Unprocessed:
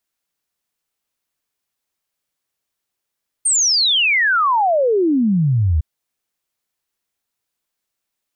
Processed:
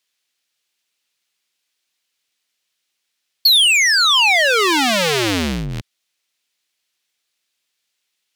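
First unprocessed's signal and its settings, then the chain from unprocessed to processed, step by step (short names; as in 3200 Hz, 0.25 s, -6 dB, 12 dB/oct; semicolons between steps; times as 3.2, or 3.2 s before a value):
log sweep 9000 Hz -> 72 Hz 2.36 s -12.5 dBFS
cycle switcher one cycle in 2, inverted; weighting filter D; compressor 6:1, threshold -11 dBFS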